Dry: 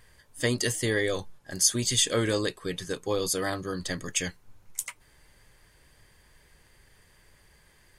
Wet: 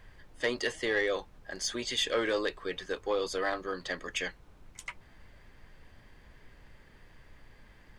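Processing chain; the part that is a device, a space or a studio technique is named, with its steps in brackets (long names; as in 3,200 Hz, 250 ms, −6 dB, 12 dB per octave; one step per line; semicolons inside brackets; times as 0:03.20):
aircraft cabin announcement (band-pass filter 430–3,100 Hz; soft clipping −20.5 dBFS, distortion −19 dB; brown noise bed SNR 17 dB)
level +1.5 dB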